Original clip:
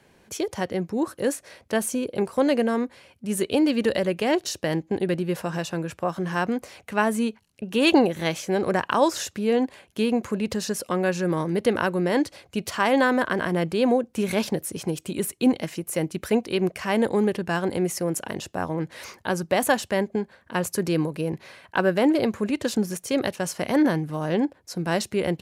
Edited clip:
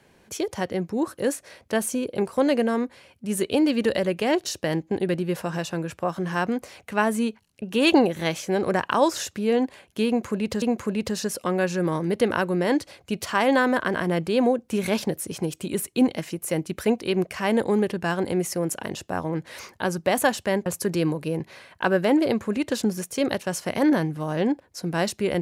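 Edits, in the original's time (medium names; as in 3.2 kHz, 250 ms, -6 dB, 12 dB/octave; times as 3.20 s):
10.07–10.62 s: loop, 2 plays
20.11–20.59 s: delete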